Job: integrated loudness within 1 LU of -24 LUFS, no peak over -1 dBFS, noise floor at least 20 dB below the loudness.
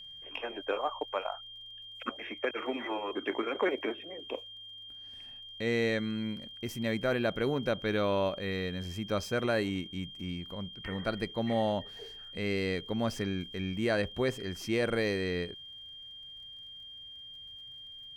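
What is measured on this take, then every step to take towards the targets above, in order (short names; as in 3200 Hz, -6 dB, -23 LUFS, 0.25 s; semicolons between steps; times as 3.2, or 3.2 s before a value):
ticks 32/s; steady tone 3200 Hz; tone level -45 dBFS; loudness -33.5 LUFS; peak -18.5 dBFS; loudness target -24.0 LUFS
-> de-click; notch 3200 Hz, Q 30; gain +9.5 dB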